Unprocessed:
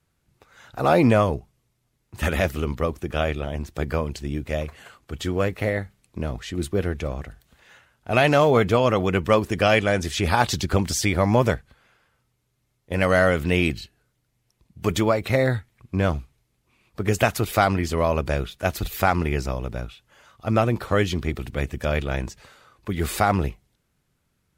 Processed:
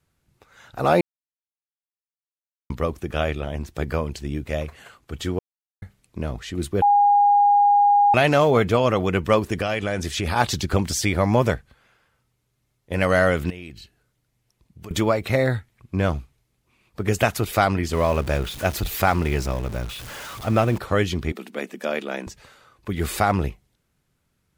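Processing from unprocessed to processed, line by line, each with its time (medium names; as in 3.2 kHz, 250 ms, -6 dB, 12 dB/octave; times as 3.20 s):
1.01–2.70 s: mute
5.39–5.82 s: mute
6.82–8.14 s: bleep 816 Hz -12.5 dBFS
9.57–10.36 s: compression, threshold -20 dBFS
13.50–14.91 s: compression 3:1, threshold -40 dBFS
17.93–20.78 s: jump at every zero crossing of -31 dBFS
21.32–22.27 s: elliptic high-pass 200 Hz, stop band 50 dB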